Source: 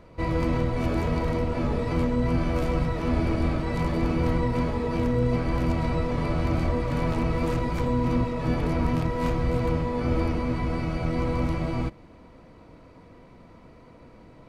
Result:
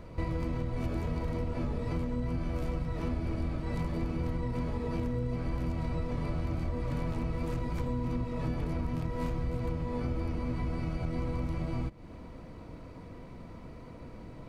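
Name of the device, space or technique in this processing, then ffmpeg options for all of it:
ASMR close-microphone chain: -af "lowshelf=frequency=230:gain=6.5,acompressor=threshold=-30dB:ratio=6,highshelf=frequency=6800:gain=4.5"

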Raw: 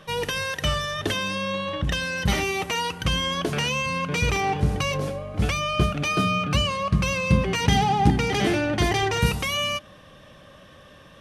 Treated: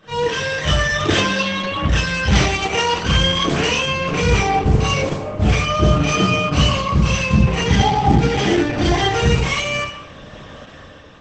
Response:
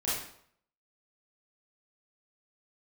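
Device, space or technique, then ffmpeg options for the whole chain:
speakerphone in a meeting room: -filter_complex "[0:a]asplit=3[link_01][link_02][link_03];[link_01]afade=type=out:start_time=6.33:duration=0.02[link_04];[link_02]equalizer=frequency=1800:width_type=o:width=0.58:gain=-3,afade=type=in:start_time=6.33:duration=0.02,afade=type=out:start_time=7.17:duration=0.02[link_05];[link_03]afade=type=in:start_time=7.17:duration=0.02[link_06];[link_04][link_05][link_06]amix=inputs=3:normalize=0[link_07];[1:a]atrim=start_sample=2205[link_08];[link_07][link_08]afir=irnorm=-1:irlink=0,dynaudnorm=framelen=140:gausssize=11:maxgain=15dB,volume=-1.5dB" -ar 48000 -c:a libopus -b:a 12k

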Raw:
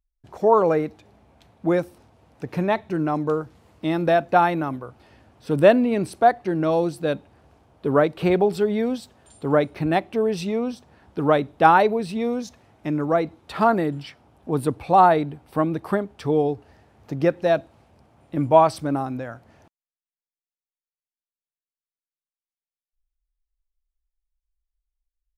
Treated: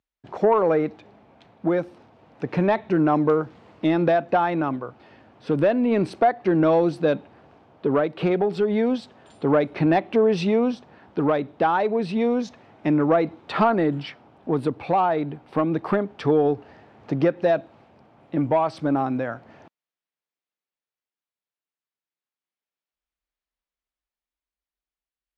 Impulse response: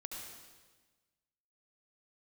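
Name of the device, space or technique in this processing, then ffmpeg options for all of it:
AM radio: -af "highpass=150,lowpass=3600,acompressor=threshold=-21dB:ratio=4,asoftclip=type=tanh:threshold=-14.5dB,tremolo=f=0.3:d=0.31,volume=7dB"

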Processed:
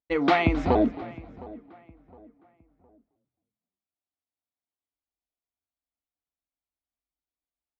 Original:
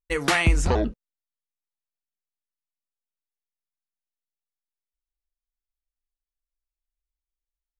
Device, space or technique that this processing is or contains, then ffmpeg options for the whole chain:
frequency-shifting delay pedal into a guitar cabinet: -filter_complex "[0:a]asplit=4[link_01][link_02][link_03][link_04];[link_02]adelay=266,afreqshift=-86,volume=-18.5dB[link_05];[link_03]adelay=532,afreqshift=-172,volume=-28.4dB[link_06];[link_04]adelay=798,afreqshift=-258,volume=-38.3dB[link_07];[link_01][link_05][link_06][link_07]amix=inputs=4:normalize=0,highpass=93,equalizer=frequency=140:width_type=q:width=4:gain=-6,equalizer=frequency=280:width_type=q:width=4:gain=10,equalizer=frequency=710:width_type=q:width=4:gain=7,equalizer=frequency=1700:width_type=q:width=4:gain=-8,equalizer=frequency=2800:width_type=q:width=4:gain=-7,lowpass=frequency=3600:width=0.5412,lowpass=frequency=3600:width=1.3066,asplit=2[link_08][link_09];[link_09]adelay=712,lowpass=frequency=2000:poles=1,volume=-20dB,asplit=2[link_10][link_11];[link_11]adelay=712,lowpass=frequency=2000:poles=1,volume=0.34,asplit=2[link_12][link_13];[link_13]adelay=712,lowpass=frequency=2000:poles=1,volume=0.34[link_14];[link_08][link_10][link_12][link_14]amix=inputs=4:normalize=0"

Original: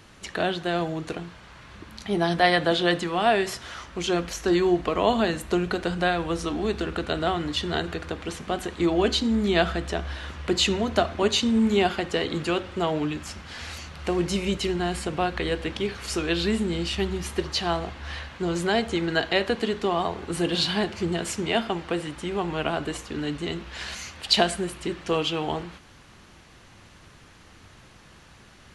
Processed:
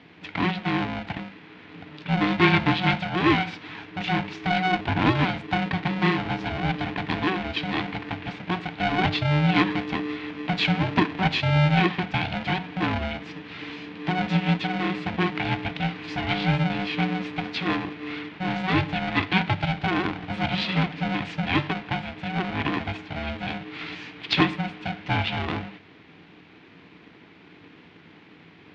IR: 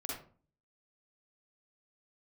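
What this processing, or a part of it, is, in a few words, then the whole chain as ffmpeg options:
ring modulator pedal into a guitar cabinet: -af "aeval=exprs='val(0)*sgn(sin(2*PI*370*n/s))':channel_layout=same,highpass=91,equalizer=frequency=96:width_type=q:width=4:gain=9,equalizer=frequency=170:width_type=q:width=4:gain=10,equalizer=frequency=310:width_type=q:width=4:gain=6,equalizer=frequency=550:width_type=q:width=4:gain=-10,equalizer=frequency=1200:width_type=q:width=4:gain=-5,equalizer=frequency=2300:width_type=q:width=4:gain=4,lowpass=frequency=3600:width=0.5412,lowpass=frequency=3600:width=1.3066"

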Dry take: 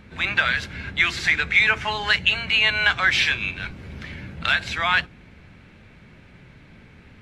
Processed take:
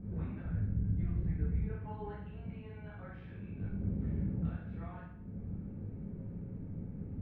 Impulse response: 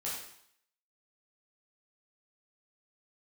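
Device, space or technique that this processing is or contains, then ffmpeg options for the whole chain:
television next door: -filter_complex "[0:a]asettb=1/sr,asplit=3[link_01][link_02][link_03];[link_01]atrim=end=0.454[link_04];[link_02]atrim=start=0.45:end=1.7,asetpts=PTS-STARTPTS,afade=type=in:duration=0.004:curve=qsin,afade=type=out:start_time=1.246:duration=0.004:curve=qsin,aemphasis=mode=reproduction:type=riaa[link_05];[link_03]atrim=start=1.696[link_06];[link_04][link_05]acrossfade=duration=0.004:curve1=hsin:curve2=qsin[link_07];[link_07][link_06]acrossfade=duration=0.004:curve1=qsin:curve2=hsin,acompressor=threshold=-36dB:ratio=5,lowpass=300[link_08];[1:a]atrim=start_sample=2205[link_09];[link_08][link_09]afir=irnorm=-1:irlink=0,volume=6.5dB"

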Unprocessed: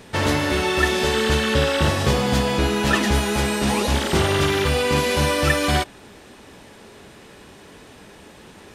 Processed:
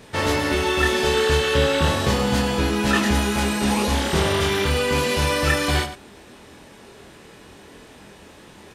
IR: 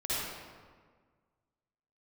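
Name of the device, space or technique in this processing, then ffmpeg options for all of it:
slapback doubling: -filter_complex "[0:a]asplit=3[link_01][link_02][link_03];[link_02]adelay=25,volume=-3dB[link_04];[link_03]adelay=116,volume=-11.5dB[link_05];[link_01][link_04][link_05]amix=inputs=3:normalize=0,volume=-2.5dB"

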